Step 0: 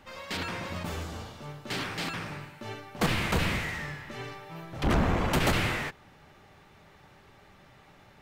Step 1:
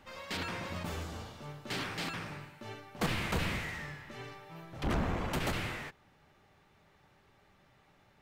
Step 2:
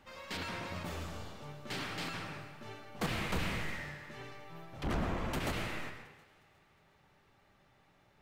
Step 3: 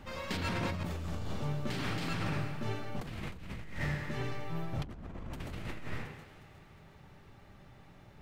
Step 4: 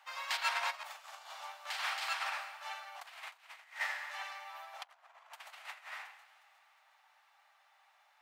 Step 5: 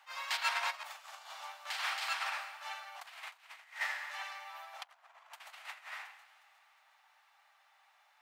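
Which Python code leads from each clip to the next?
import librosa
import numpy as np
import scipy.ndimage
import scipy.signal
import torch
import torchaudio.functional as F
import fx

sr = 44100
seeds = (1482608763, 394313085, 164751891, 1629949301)

y1 = fx.rider(x, sr, range_db=3, speed_s=2.0)
y1 = y1 * 10.0 ** (-6.5 / 20.0)
y2 = fx.echo_thinned(y1, sr, ms=360, feedback_pct=42, hz=520.0, wet_db=-21.0)
y2 = fx.rev_freeverb(y2, sr, rt60_s=0.91, hf_ratio=0.7, predelay_ms=75, drr_db=6.0)
y2 = y2 * 10.0 ** (-3.0 / 20.0)
y3 = fx.low_shelf(y2, sr, hz=300.0, db=10.5)
y3 = fx.over_compress(y3, sr, threshold_db=-38.0, ratio=-1.0)
y3 = y3 * 10.0 ** (1.0 / 20.0)
y4 = scipy.signal.sosfilt(scipy.signal.butter(8, 710.0, 'highpass', fs=sr, output='sos'), y3)
y4 = fx.upward_expand(y4, sr, threshold_db=-56.0, expansion=1.5)
y4 = y4 * 10.0 ** (6.0 / 20.0)
y5 = fx.highpass(y4, sr, hz=520.0, slope=6)
y5 = fx.attack_slew(y5, sr, db_per_s=320.0)
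y5 = y5 * 10.0 ** (1.0 / 20.0)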